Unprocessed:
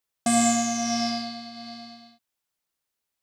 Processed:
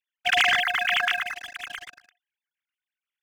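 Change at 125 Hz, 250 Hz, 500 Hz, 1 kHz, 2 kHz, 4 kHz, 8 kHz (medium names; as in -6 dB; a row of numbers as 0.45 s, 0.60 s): under -10 dB, under -25 dB, -4.0 dB, -0.5 dB, +14.0 dB, +6.5 dB, -14.5 dB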